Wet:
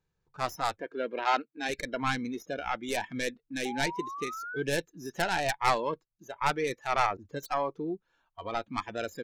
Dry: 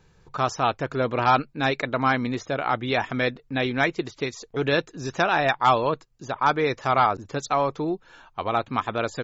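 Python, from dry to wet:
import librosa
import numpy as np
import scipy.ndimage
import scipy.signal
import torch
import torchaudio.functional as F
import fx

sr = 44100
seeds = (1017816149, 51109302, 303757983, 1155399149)

y = fx.tracing_dist(x, sr, depth_ms=0.24)
y = fx.bandpass_edges(y, sr, low_hz=260.0, high_hz=4600.0, at=(0.8, 1.68), fade=0.02)
y = fx.noise_reduce_blind(y, sr, reduce_db=16)
y = fx.spec_paint(y, sr, seeds[0], shape='rise', start_s=3.65, length_s=0.98, low_hz=780.0, high_hz=1600.0, level_db=-32.0)
y = F.gain(torch.from_numpy(y), -7.0).numpy()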